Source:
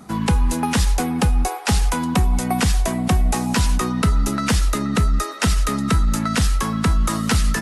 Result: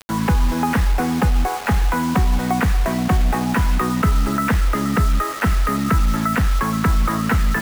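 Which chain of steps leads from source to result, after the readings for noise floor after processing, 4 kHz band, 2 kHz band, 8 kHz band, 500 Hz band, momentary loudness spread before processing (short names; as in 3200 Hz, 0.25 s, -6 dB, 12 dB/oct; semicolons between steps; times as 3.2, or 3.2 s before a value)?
-24 dBFS, -5.0 dB, +2.5 dB, -6.5 dB, +1.5 dB, 1 LU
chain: in parallel at -2 dB: limiter -19 dBFS, peak gain reduction 11 dB; on the sum: ladder low-pass 2300 Hz, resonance 30%; bit-crush 6-bit; gain +5 dB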